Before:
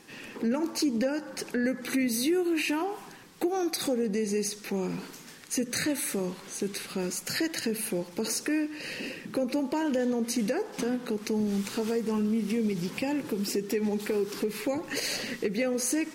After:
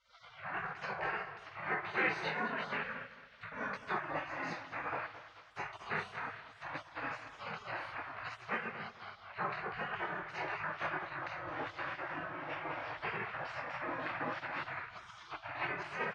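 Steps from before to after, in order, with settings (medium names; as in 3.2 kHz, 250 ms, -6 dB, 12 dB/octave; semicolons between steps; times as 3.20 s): in parallel at -9 dB: wavefolder -29.5 dBFS; on the sum: reverberation RT60 0.65 s, pre-delay 7 ms, DRR -6 dB; chorus voices 6, 0.5 Hz, delay 23 ms, depth 3.7 ms; band-pass 130–3200 Hz; spectral gate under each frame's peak -25 dB weak; peaking EQ 1.6 kHz +3 dB 0.91 oct; on a send: feedback delay 218 ms, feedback 33%, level -14 dB; on the sum: level-controlled noise filter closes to 1.5 kHz, open at -16.5 dBFS; tape noise reduction on one side only encoder only; trim +4 dB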